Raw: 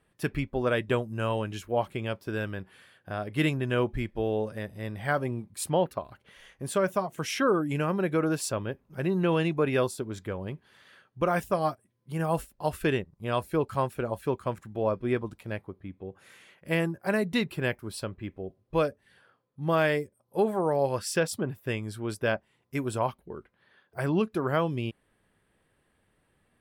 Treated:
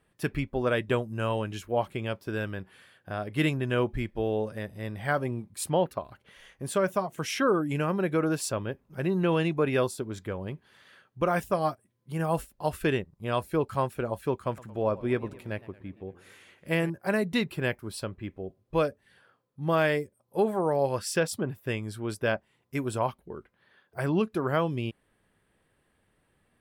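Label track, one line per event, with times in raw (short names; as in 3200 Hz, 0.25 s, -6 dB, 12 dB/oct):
14.350000	16.900000	warbling echo 0.115 s, feedback 61%, depth 168 cents, level -19.5 dB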